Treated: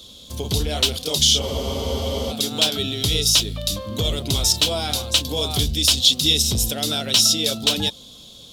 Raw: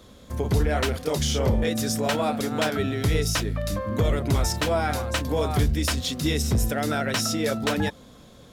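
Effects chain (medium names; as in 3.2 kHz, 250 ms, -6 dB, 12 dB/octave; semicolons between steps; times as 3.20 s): resonant high shelf 2.5 kHz +11 dB, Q 3; spectral freeze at 1.44 s, 0.86 s; trim -1.5 dB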